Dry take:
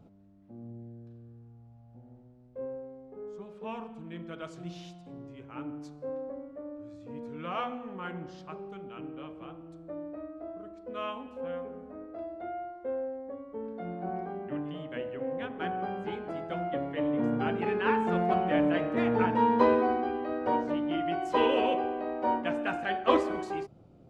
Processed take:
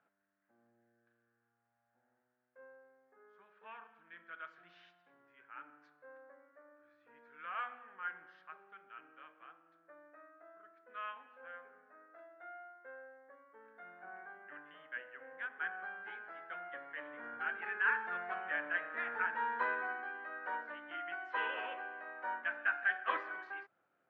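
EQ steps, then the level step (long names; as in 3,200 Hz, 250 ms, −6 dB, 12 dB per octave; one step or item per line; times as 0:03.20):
resonant band-pass 1,600 Hz, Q 5.1
high-frequency loss of the air 230 metres
spectral tilt +2.5 dB per octave
+5.5 dB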